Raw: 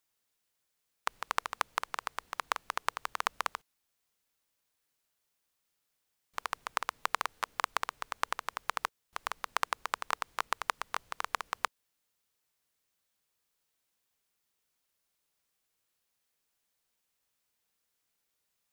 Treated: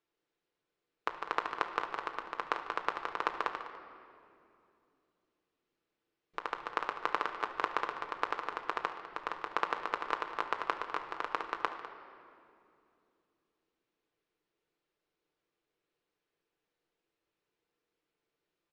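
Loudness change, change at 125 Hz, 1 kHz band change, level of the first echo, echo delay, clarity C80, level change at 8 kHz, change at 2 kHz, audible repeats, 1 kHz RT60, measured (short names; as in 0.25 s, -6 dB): -0.5 dB, n/a, 0.0 dB, -18.0 dB, 72 ms, 8.5 dB, under -15 dB, -1.0 dB, 3, 2.3 s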